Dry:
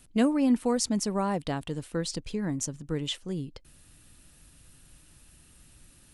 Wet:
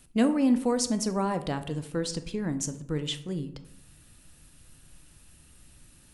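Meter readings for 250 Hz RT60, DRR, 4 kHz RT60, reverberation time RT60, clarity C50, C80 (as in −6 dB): 1.0 s, 9.5 dB, 0.40 s, 0.75 s, 13.0 dB, 16.0 dB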